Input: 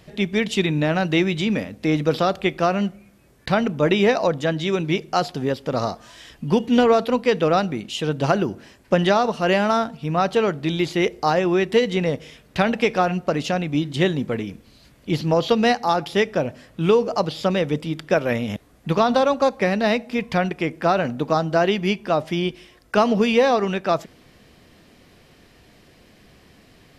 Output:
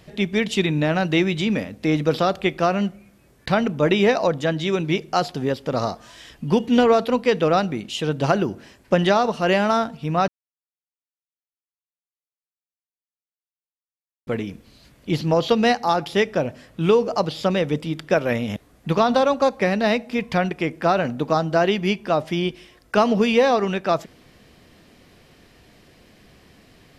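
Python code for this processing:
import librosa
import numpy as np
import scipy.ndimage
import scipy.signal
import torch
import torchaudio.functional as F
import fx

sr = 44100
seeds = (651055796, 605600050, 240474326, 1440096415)

y = fx.edit(x, sr, fx.silence(start_s=10.28, length_s=3.99), tone=tone)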